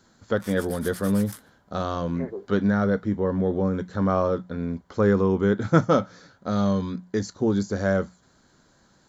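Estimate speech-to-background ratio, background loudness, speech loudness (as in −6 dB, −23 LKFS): 17.0 dB, −42.0 LKFS, −25.0 LKFS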